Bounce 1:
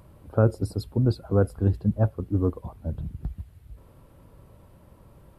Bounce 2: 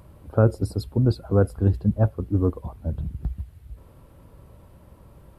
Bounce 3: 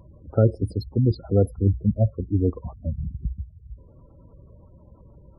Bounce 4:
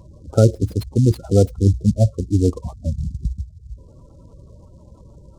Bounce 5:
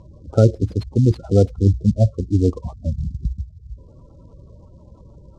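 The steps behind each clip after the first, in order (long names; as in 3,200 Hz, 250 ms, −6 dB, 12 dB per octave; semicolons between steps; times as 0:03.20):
parametric band 65 Hz +5.5 dB 0.35 octaves; level +2 dB
gate on every frequency bin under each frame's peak −20 dB strong
short delay modulated by noise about 5,800 Hz, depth 0.031 ms; level +5 dB
high-frequency loss of the air 94 metres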